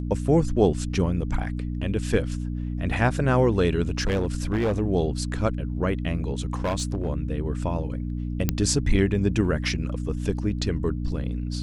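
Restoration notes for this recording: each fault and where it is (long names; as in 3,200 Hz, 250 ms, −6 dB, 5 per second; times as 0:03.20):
mains hum 60 Hz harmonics 5 −29 dBFS
0:04.00–0:04.80: clipping −19.5 dBFS
0:06.45–0:07.09: clipping −21 dBFS
0:08.49: click −7 dBFS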